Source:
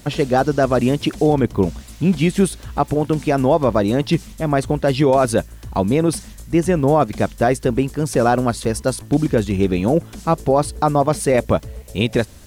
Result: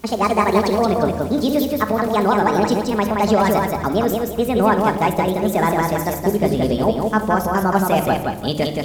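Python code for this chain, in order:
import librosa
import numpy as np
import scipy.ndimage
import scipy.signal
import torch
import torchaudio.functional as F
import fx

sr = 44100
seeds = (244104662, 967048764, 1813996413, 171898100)

y = fx.speed_glide(x, sr, from_pct=157, to_pct=125)
y = fx.echo_feedback(y, sr, ms=173, feedback_pct=33, wet_db=-3.5)
y = fx.room_shoebox(y, sr, seeds[0], volume_m3=2000.0, walls='furnished', distance_m=1.4)
y = F.gain(torch.from_numpy(y), -3.5).numpy()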